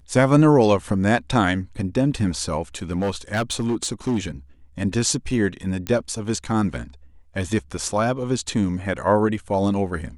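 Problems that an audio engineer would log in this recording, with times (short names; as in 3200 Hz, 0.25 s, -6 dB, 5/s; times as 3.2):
2.91–4.18 clipped -18 dBFS
5.87 pop -11 dBFS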